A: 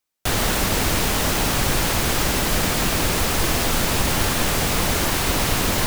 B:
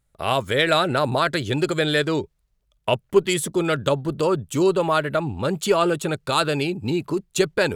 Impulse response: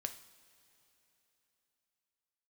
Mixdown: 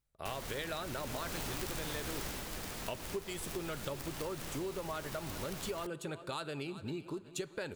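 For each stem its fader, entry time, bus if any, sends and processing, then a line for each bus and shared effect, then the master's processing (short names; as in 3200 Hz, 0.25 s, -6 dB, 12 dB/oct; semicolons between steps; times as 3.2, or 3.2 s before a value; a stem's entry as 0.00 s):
0.94 s -9 dB -> 1.43 s -1 dB -> 2.27 s -1 dB -> 2.48 s -10.5 dB, 0.00 s, no send, no echo send, wrapped overs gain 11 dB; auto duck -11 dB, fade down 0.20 s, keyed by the second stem
-18.0 dB, 0.00 s, send -3 dB, echo send -15 dB, dry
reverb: on, pre-delay 3 ms
echo: feedback echo 0.383 s, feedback 47%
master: compressor, threshold -36 dBFS, peak gain reduction 11.5 dB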